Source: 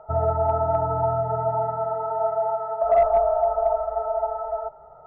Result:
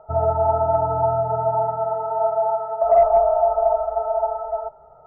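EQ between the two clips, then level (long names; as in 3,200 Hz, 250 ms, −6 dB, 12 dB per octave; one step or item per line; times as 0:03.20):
low-pass filter 1,300 Hz 6 dB per octave
dynamic equaliser 830 Hz, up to +6 dB, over −32 dBFS, Q 1.4
0.0 dB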